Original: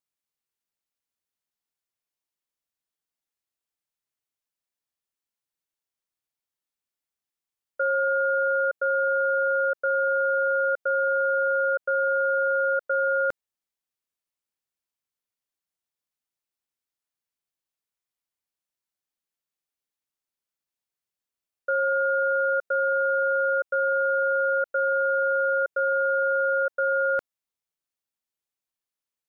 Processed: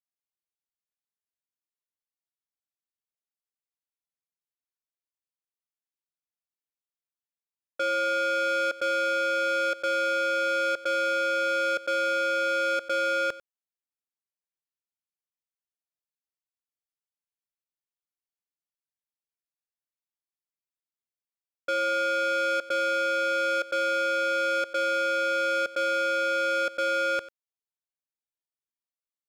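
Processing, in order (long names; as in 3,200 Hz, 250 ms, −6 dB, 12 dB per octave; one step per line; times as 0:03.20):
speech leveller 0.5 s
leveller curve on the samples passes 3
single-tap delay 95 ms −17.5 dB
level −6 dB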